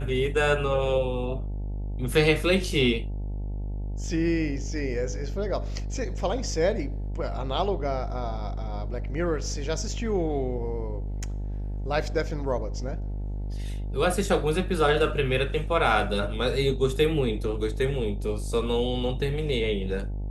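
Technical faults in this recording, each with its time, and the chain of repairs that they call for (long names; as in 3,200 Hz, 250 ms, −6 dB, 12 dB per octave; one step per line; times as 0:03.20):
mains buzz 50 Hz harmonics 18 −31 dBFS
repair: hum removal 50 Hz, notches 18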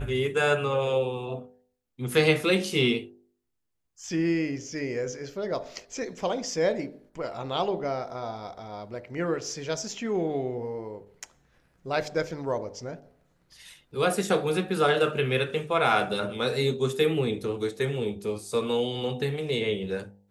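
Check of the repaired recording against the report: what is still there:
none of them is left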